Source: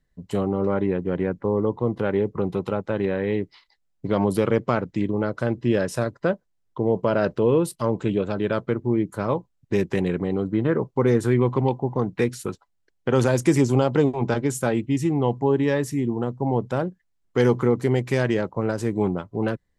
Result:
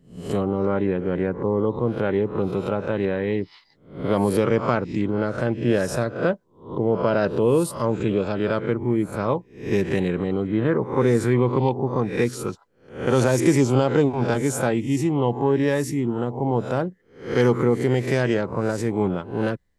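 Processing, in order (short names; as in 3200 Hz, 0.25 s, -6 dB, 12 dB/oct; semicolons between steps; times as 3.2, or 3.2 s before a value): spectral swells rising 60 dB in 0.43 s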